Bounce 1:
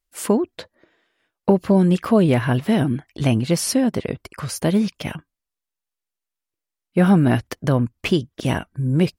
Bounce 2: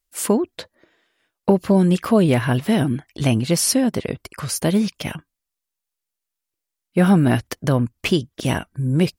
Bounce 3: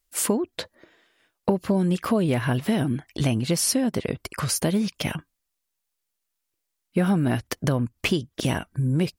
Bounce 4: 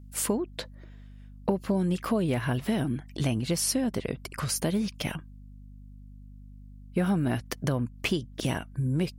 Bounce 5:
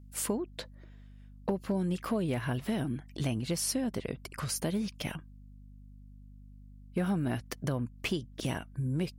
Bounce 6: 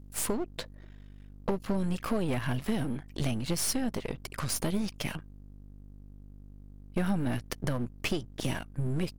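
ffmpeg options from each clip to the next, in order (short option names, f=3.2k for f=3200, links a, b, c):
-af "highshelf=f=4k:g=6"
-af "acompressor=threshold=-26dB:ratio=2.5,volume=3dB"
-af "aeval=exprs='val(0)+0.00891*(sin(2*PI*50*n/s)+sin(2*PI*2*50*n/s)/2+sin(2*PI*3*50*n/s)/3+sin(2*PI*4*50*n/s)/4+sin(2*PI*5*50*n/s)/5)':c=same,volume=-4.5dB"
-af "aeval=exprs='clip(val(0),-1,0.0944)':c=same,volume=-4.5dB"
-af "aeval=exprs='if(lt(val(0),0),0.251*val(0),val(0))':c=same,volume=5.5dB"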